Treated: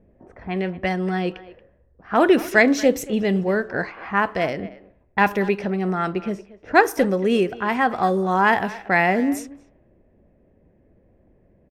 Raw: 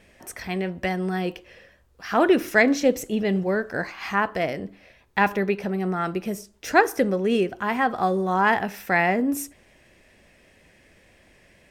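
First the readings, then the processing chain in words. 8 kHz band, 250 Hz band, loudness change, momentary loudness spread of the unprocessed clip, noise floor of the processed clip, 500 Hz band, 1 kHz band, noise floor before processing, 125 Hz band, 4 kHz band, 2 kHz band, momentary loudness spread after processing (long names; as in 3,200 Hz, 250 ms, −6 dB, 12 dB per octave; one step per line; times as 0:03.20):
0.0 dB, +2.5 dB, +2.5 dB, 12 LU, −59 dBFS, +2.5 dB, +2.5 dB, −57 dBFS, +2.5 dB, +2.0 dB, +2.5 dB, 12 LU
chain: low-pass that shuts in the quiet parts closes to 450 Hz, open at −19.5 dBFS
far-end echo of a speakerphone 230 ms, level −17 dB
level +2.5 dB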